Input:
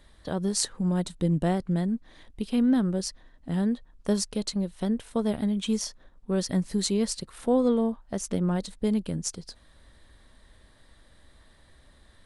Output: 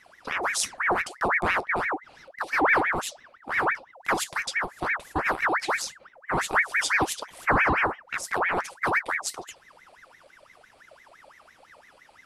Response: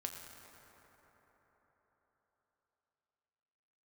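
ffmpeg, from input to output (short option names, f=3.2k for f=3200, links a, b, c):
-af "flanger=delay=8.3:depth=7.6:regen=64:speed=2:shape=triangular,aeval=exprs='val(0)*sin(2*PI*1300*n/s+1300*0.6/5.9*sin(2*PI*5.9*n/s))':c=same,volume=7.5dB"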